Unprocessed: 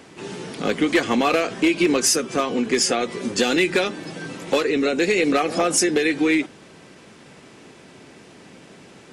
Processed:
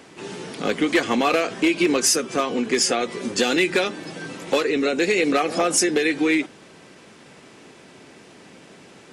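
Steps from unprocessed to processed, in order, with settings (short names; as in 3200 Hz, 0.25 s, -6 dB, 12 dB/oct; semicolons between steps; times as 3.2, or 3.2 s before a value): low shelf 170 Hz -5 dB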